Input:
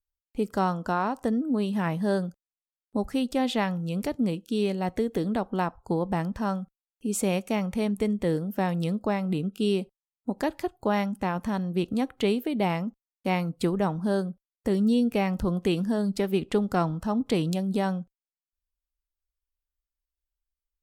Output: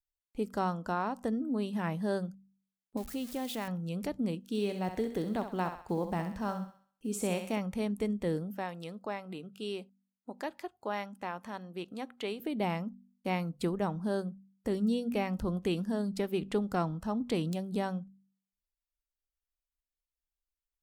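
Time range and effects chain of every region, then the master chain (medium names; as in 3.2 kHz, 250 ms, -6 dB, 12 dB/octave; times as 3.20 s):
2.97–3.68 s: zero-crossing glitches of -25.5 dBFS + compression 2:1, threshold -28 dBFS
4.40–7.58 s: block-companded coder 7-bit + thinning echo 65 ms, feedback 45%, high-pass 390 Hz, level -7.5 dB
8.52–12.40 s: high-pass 630 Hz 6 dB/octave + treble shelf 5.3 kHz -5.5 dB
whole clip: de-hum 48.32 Hz, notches 5; de-esser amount 50%; trim -6 dB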